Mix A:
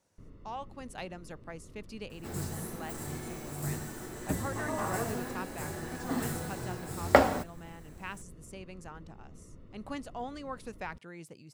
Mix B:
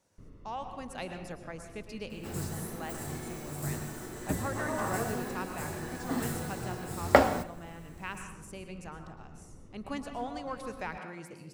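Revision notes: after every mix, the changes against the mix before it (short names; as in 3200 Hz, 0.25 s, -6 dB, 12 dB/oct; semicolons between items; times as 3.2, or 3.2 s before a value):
reverb: on, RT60 1.1 s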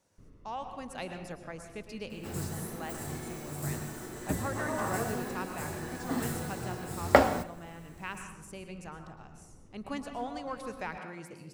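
first sound -4.0 dB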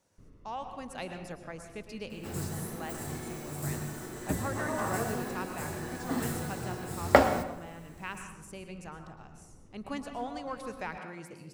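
second sound: send +7.5 dB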